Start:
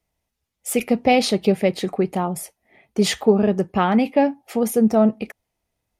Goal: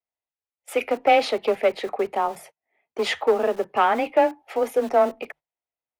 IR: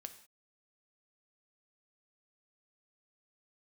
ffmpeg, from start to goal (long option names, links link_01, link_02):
-filter_complex "[0:a]asplit=2[link_01][link_02];[link_02]aeval=exprs='0.237*(abs(mod(val(0)/0.237+3,4)-2)-1)':channel_layout=same,volume=-8.5dB[link_03];[link_01][link_03]amix=inputs=2:normalize=0,acrossover=split=380 3200:gain=0.141 1 0.141[link_04][link_05][link_06];[link_04][link_05][link_06]amix=inputs=3:normalize=0,afreqshift=18,acrossover=split=220|2400[link_07][link_08][link_09];[link_07]aeval=exprs='(mod(141*val(0)+1,2)-1)/141':channel_layout=same[link_10];[link_10][link_08][link_09]amix=inputs=3:normalize=0,bandreject=frequency=50:width_type=h:width=6,bandreject=frequency=100:width_type=h:width=6,bandreject=frequency=150:width_type=h:width=6,agate=range=-18dB:threshold=-45dB:ratio=16:detection=peak"